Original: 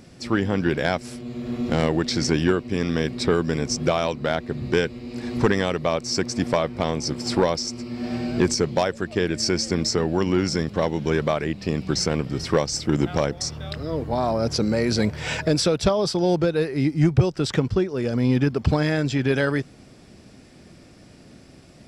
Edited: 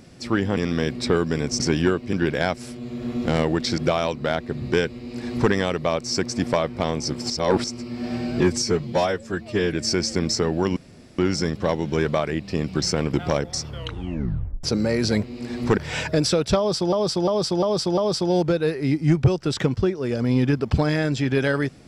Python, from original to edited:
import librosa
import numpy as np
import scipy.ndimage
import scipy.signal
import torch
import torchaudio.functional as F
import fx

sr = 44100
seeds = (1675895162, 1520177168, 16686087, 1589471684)

y = fx.edit(x, sr, fx.swap(start_s=0.57, length_s=1.65, other_s=2.75, other_length_s=1.03),
    fx.duplicate(start_s=4.97, length_s=0.54, to_s=15.11),
    fx.reverse_span(start_s=7.3, length_s=0.34),
    fx.stretch_span(start_s=8.4, length_s=0.89, factor=1.5),
    fx.insert_room_tone(at_s=10.32, length_s=0.42),
    fx.cut(start_s=12.27, length_s=0.74),
    fx.tape_stop(start_s=13.54, length_s=0.97),
    fx.repeat(start_s=15.91, length_s=0.35, count=5), tone=tone)